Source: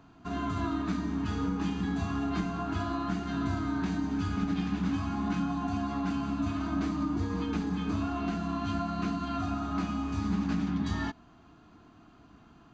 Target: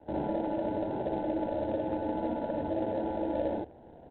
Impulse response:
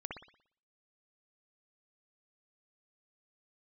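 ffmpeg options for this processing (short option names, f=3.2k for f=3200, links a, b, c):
-filter_complex "[0:a]aresample=11025,acrusher=samples=29:mix=1:aa=0.000001,aresample=44100,asplit=2[a][b];[b]adelay=244.9,volume=-28dB,highshelf=f=4k:g=-5.51[c];[a][c]amix=inputs=2:normalize=0,asetrate=136710,aresample=44100,acrossover=split=110|550[d][e][f];[d]acompressor=threshold=-54dB:ratio=4[g];[e]acompressor=threshold=-34dB:ratio=4[h];[f]acompressor=threshold=-42dB:ratio=4[i];[g][h][i]amix=inputs=3:normalize=0,lowpass=f=800:t=q:w=1.8,equalizer=f=74:w=5.2:g=12[j];[1:a]atrim=start_sample=2205,atrim=end_sample=3528[k];[j][k]afir=irnorm=-1:irlink=0,adynamicequalizer=threshold=0.00158:dfrequency=170:dqfactor=1.9:tfrequency=170:tqfactor=1.9:attack=5:release=100:ratio=0.375:range=3:mode=cutabove:tftype=bell,volume=4dB" -ar 8000 -c:a adpcm_ima_wav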